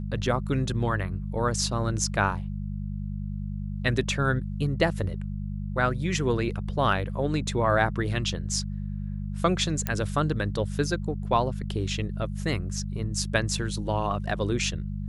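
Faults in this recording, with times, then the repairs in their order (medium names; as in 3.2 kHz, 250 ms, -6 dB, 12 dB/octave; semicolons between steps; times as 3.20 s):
hum 50 Hz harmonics 4 -32 dBFS
9.87 s: pop -12 dBFS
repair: de-click; de-hum 50 Hz, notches 4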